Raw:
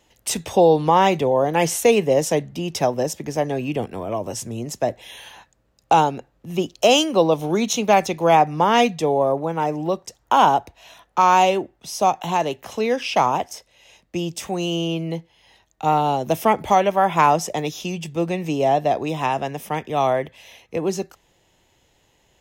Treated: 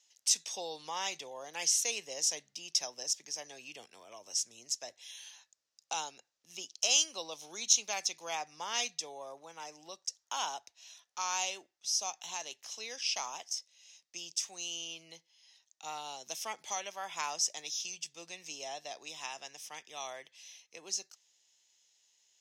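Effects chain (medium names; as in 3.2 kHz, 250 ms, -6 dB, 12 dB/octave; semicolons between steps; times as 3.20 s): band-pass filter 5.7 kHz, Q 2.8; trim +2 dB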